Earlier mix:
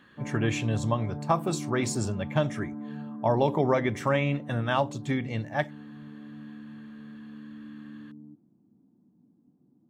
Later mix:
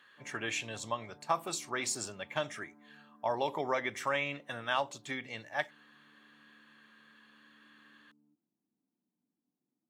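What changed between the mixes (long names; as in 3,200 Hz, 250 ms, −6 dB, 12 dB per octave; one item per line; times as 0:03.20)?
background −8.5 dB
master: add high-pass filter 1,400 Hz 6 dB per octave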